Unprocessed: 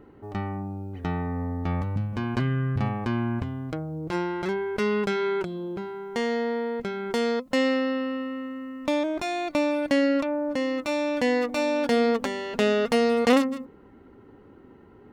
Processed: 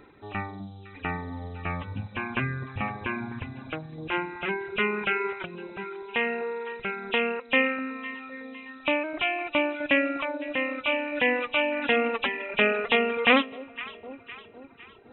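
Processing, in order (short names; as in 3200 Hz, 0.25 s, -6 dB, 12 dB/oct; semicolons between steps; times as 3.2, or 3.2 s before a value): nonlinear frequency compression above 2300 Hz 4:1; tilt shelf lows -8 dB, about 1200 Hz; notches 60/120/180/240 Hz; echo with dull and thin repeats by turns 0.254 s, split 870 Hz, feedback 68%, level -11.5 dB; reverb removal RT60 1.2 s; gain +4 dB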